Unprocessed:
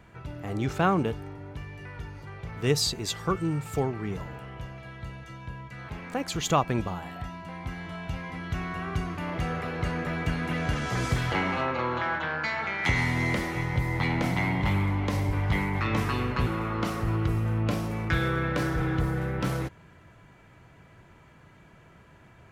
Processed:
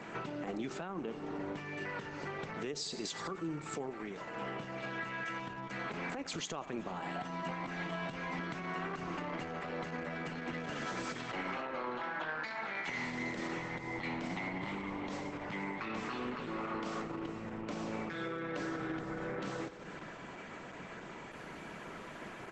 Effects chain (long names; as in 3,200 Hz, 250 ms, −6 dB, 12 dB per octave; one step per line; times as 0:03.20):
0:04.99–0:05.40: parametric band 1,700 Hz +9.5 dB 1.4 octaves
repeating echo 89 ms, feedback 57%, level −19 dB
downward compressor 10 to 1, threshold −42 dBFS, peak gain reduction 23.5 dB
high-pass filter 190 Hz 24 dB per octave
0:03.90–0:04.37: low-shelf EQ 380 Hz −9 dB
brickwall limiter −39.5 dBFS, peak gain reduction 10.5 dB
level +11 dB
Opus 12 kbit/s 48,000 Hz